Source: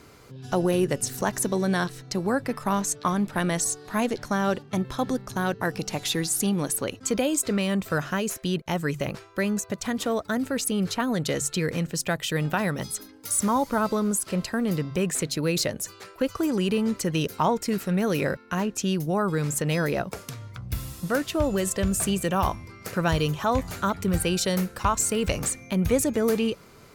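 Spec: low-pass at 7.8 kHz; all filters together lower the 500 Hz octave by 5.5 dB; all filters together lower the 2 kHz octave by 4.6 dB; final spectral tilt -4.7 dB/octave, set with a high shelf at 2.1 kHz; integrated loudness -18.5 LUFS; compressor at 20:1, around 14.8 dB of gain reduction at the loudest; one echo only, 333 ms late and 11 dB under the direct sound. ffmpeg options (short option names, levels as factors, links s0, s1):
-af "lowpass=7800,equalizer=f=500:t=o:g=-6.5,equalizer=f=2000:t=o:g=-3.5,highshelf=f=2100:g=-4,acompressor=threshold=0.0178:ratio=20,aecho=1:1:333:0.282,volume=11.9"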